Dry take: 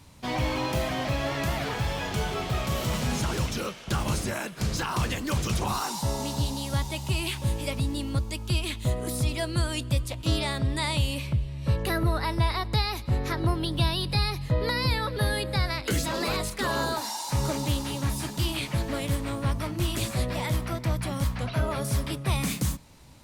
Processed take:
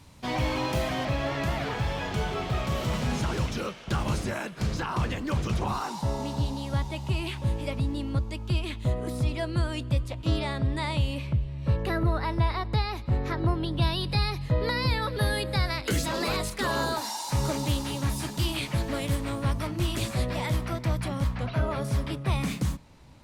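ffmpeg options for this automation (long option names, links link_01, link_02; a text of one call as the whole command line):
ffmpeg -i in.wav -af "asetnsamples=nb_out_samples=441:pad=0,asendcmd='1.05 lowpass f 3700;4.74 lowpass f 2100;13.82 lowpass f 4900;15.02 lowpass f 12000;19.67 lowpass f 6700;21.08 lowpass f 2900',lowpass=frequency=9600:poles=1" out.wav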